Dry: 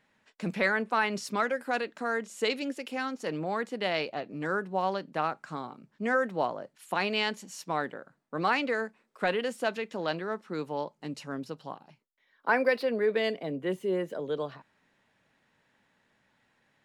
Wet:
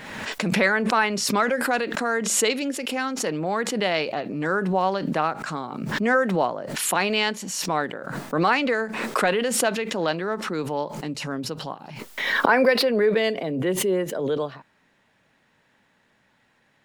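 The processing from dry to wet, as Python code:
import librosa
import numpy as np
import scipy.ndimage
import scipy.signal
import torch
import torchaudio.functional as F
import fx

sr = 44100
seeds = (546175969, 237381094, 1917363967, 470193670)

y = fx.pre_swell(x, sr, db_per_s=39.0)
y = F.gain(torch.from_numpy(y), 6.0).numpy()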